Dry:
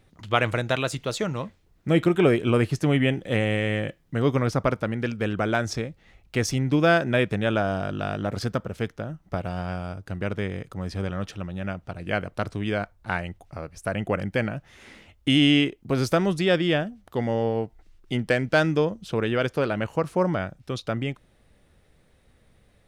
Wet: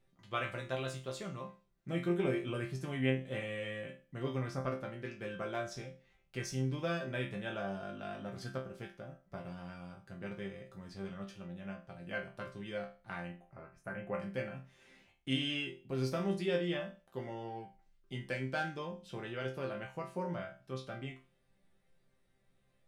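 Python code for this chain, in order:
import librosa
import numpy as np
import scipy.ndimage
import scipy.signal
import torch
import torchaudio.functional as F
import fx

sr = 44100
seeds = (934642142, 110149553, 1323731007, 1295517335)

y = fx.high_shelf_res(x, sr, hz=2600.0, db=-10.0, q=1.5, at=(13.27, 14.15))
y = fx.resonator_bank(y, sr, root=48, chord='sus4', decay_s=0.35)
y = F.gain(torch.from_numpy(y), 1.0).numpy()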